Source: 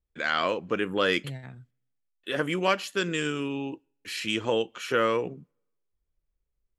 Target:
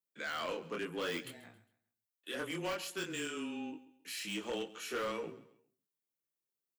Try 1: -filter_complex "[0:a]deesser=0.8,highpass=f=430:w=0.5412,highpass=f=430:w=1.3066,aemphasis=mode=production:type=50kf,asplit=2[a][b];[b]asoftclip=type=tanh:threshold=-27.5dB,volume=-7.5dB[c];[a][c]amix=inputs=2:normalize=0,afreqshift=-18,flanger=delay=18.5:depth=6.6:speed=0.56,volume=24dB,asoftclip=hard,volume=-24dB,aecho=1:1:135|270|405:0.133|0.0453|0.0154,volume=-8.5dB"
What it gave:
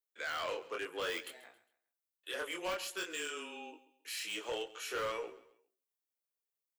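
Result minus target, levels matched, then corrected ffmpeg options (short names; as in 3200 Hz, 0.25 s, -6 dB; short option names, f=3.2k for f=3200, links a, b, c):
250 Hz band -9.0 dB; soft clip: distortion -6 dB
-filter_complex "[0:a]deesser=0.8,highpass=f=190:w=0.5412,highpass=f=190:w=1.3066,aemphasis=mode=production:type=50kf,asplit=2[a][b];[b]asoftclip=type=tanh:threshold=-38.5dB,volume=-7.5dB[c];[a][c]amix=inputs=2:normalize=0,afreqshift=-18,flanger=delay=18.5:depth=6.6:speed=0.56,volume=24dB,asoftclip=hard,volume=-24dB,aecho=1:1:135|270|405:0.133|0.0453|0.0154,volume=-8.5dB"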